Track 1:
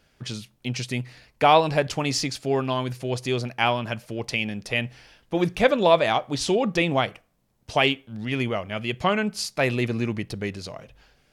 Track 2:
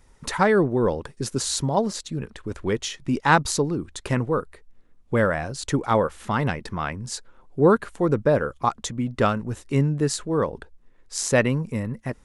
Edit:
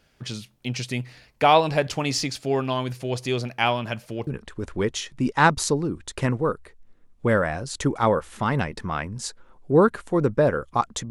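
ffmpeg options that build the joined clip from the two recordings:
-filter_complex "[0:a]apad=whole_dur=11.1,atrim=end=11.1,atrim=end=4.272[a];[1:a]atrim=start=2.148:end=8.98[b];[a][b]acrossfade=d=0.004:c1=hsin:c2=hsin"

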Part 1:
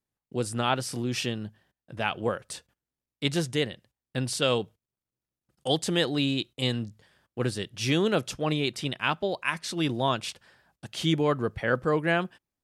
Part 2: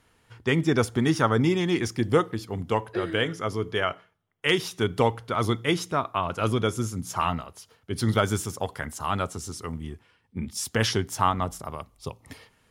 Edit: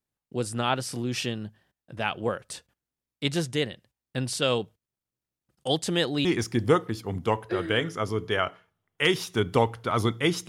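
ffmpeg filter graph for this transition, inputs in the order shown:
-filter_complex "[0:a]apad=whole_dur=10.48,atrim=end=10.48,atrim=end=6.252[a];[1:a]atrim=start=1.688:end=5.92[b];[a][b]acrossfade=d=0.004:c1=hsin:c2=hsin"

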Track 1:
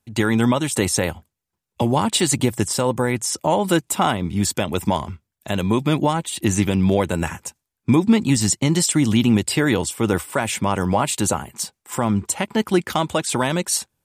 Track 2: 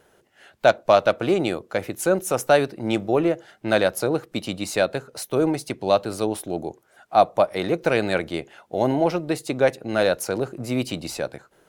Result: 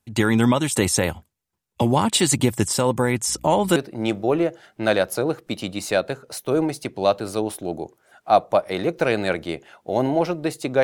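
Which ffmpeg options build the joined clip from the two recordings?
-filter_complex "[0:a]asettb=1/sr,asplit=3[a][b][c];[a]atrim=end=3.284[d];[b]atrim=start=3.28:end=3.76,asetpts=PTS-STARTPTS,afade=t=in:d=0.004:c=qsin,afade=t=out:st=0.476:d=0.004:c=qsin,aeval=exprs='val(0)+0.00562*(sin(2*PI*60*n/s)+sin(2*PI*2*60*n/s)/2+sin(2*PI*3*60*n/s)/3+sin(2*PI*4*60*n/s)/4+sin(2*PI*5*60*n/s)/5)':c=same[e];[c]atrim=start=3.756[f];[d][e]acrossfade=d=0.004:c1=hsin:c2=qsin[g];[g][f]acrossfade=d=0.004:c1=qsin:c2=hsin,apad=whole_dur=10.83,atrim=end=10.83,atrim=end=3.762[h];[1:a]atrim=start=2.608:end=9.68[i];[h][i]acrossfade=d=0.004:c1=hsin:c2=hsin"

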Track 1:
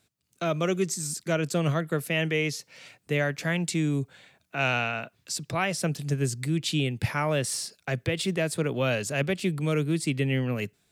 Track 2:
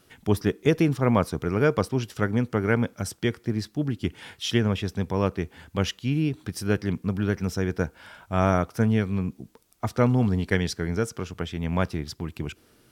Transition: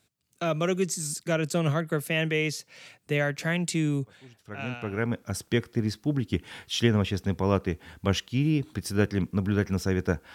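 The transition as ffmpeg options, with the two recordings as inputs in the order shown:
-filter_complex "[0:a]apad=whole_dur=10.34,atrim=end=10.34,atrim=end=5.46,asetpts=PTS-STARTPTS[a];[1:a]atrim=start=1.61:end=8.05,asetpts=PTS-STARTPTS[b];[a][b]acrossfade=d=1.56:c1=qua:c2=qua"

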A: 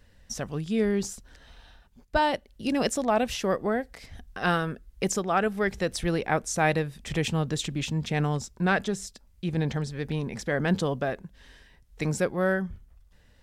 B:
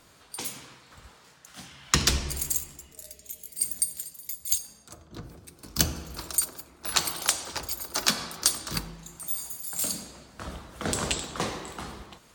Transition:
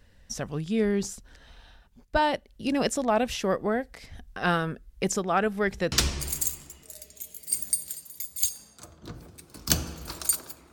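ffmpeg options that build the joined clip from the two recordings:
-filter_complex "[0:a]apad=whole_dur=10.72,atrim=end=10.72,atrim=end=5.922[a];[1:a]atrim=start=2.008:end=6.81[b];[a][b]acrossfade=d=0.004:c1=hsin:c2=hsin"

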